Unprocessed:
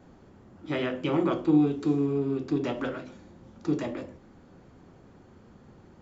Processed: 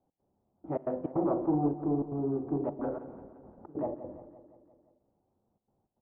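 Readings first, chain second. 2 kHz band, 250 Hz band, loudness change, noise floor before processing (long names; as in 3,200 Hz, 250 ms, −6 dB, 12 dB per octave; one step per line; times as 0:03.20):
below −20 dB, −5.5 dB, −5.0 dB, −55 dBFS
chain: mains-hum notches 60/120/180/240/300/360/420/480/540 Hz
noise gate with hold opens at −41 dBFS
gate pattern "x.xxxxxx.x" 156 BPM −24 dB
in parallel at −7.5 dB: wave folding −22 dBFS
on the sum: transistor ladder low-pass 910 Hz, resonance 50%
on a send: repeating echo 173 ms, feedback 59%, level −13.5 dB
on the sum: spring reverb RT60 1.5 s, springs 41 ms, chirp 50 ms, DRR 19.5 dB
level +3 dB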